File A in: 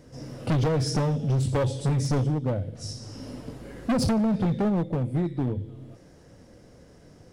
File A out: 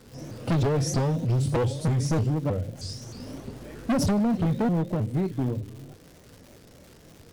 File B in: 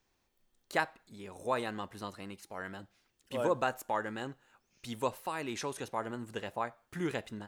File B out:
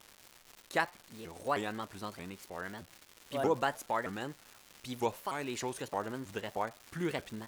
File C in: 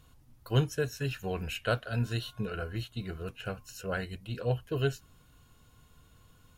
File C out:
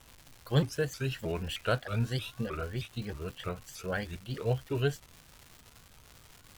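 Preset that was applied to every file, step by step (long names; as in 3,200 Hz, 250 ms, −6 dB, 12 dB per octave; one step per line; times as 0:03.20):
surface crackle 380 per second −41 dBFS
pitch modulation by a square or saw wave saw up 3.2 Hz, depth 250 cents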